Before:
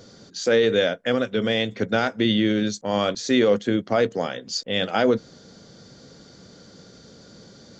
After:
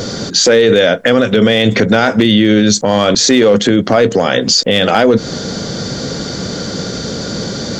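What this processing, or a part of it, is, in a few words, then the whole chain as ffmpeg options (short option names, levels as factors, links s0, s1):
loud club master: -af "acompressor=threshold=0.0631:ratio=2,asoftclip=type=hard:threshold=0.158,alimiter=level_in=23.7:limit=0.891:release=50:level=0:latency=1,volume=0.891"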